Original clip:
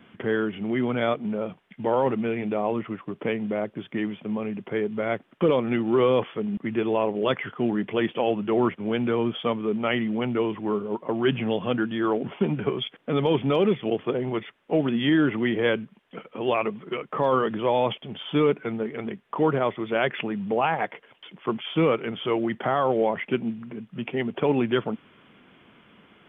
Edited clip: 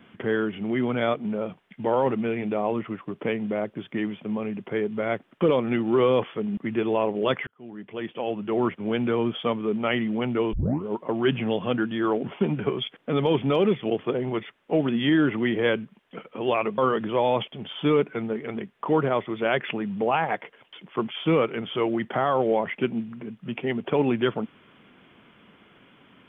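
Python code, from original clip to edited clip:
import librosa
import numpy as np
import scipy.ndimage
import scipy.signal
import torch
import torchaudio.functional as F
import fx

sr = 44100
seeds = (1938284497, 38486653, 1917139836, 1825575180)

y = fx.edit(x, sr, fx.fade_in_span(start_s=7.47, length_s=1.41),
    fx.tape_start(start_s=10.53, length_s=0.31),
    fx.cut(start_s=16.78, length_s=0.5), tone=tone)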